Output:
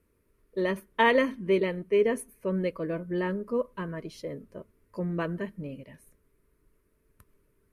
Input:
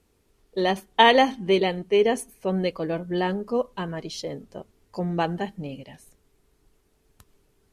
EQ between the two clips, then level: Butterworth band-stop 780 Hz, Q 2.9; band shelf 4800 Hz -10.5 dB; -3.5 dB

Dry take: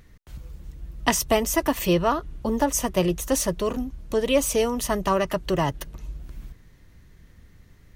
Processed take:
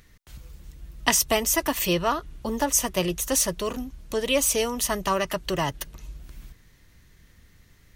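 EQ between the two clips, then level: tilt shelf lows -4.5 dB, about 1400 Hz; 0.0 dB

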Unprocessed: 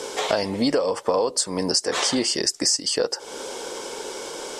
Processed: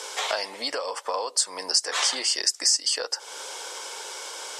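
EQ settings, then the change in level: HPF 890 Hz 12 dB/oct; 0.0 dB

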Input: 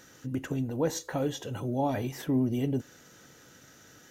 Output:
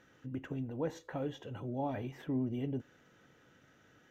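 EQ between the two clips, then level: air absorption 51 m; band shelf 6700 Hz -10 dB; -7.5 dB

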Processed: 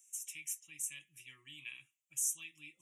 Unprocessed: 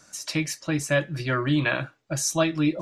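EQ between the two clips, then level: inverse Chebyshev high-pass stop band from 1600 Hz, stop band 40 dB; Butterworth band-stop 4400 Hz, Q 0.78; 0.0 dB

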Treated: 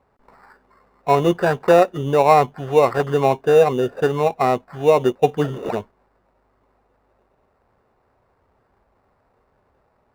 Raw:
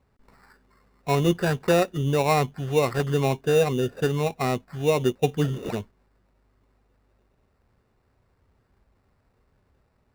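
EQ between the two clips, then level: bell 780 Hz +14 dB 2.7 oct; -3.5 dB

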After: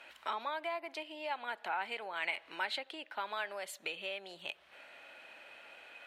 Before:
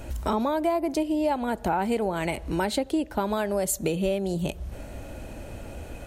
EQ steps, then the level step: band-pass 2700 Hz, Q 0.59; air absorption 500 m; differentiator; +15.5 dB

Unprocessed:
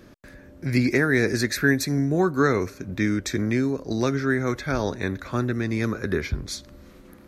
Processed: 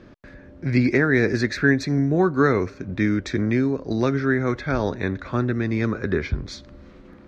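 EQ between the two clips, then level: air absorption 160 m; +2.5 dB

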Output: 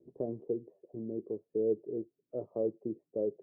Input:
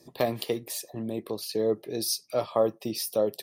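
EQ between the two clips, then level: ladder low-pass 480 Hz, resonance 50%; 0.0 dB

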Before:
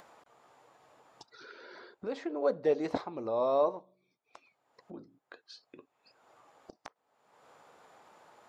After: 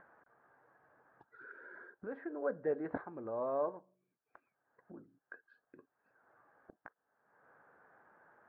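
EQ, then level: ladder low-pass 1700 Hz, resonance 80%; tilt shelf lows +5.5 dB, about 710 Hz; +2.5 dB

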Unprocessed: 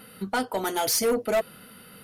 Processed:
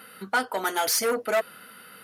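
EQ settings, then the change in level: HPF 410 Hz 6 dB/oct; bell 1500 Hz +6.5 dB 1 oct; 0.0 dB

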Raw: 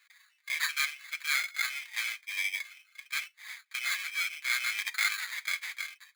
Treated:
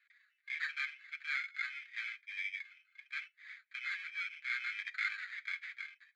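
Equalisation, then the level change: steep high-pass 1400 Hz 48 dB/oct; tape spacing loss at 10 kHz 31 dB; high shelf 3400 Hz -9 dB; +2.5 dB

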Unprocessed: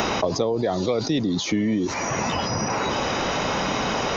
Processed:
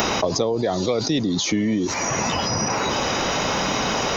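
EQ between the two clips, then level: high shelf 6400 Hz +11 dB; +1.0 dB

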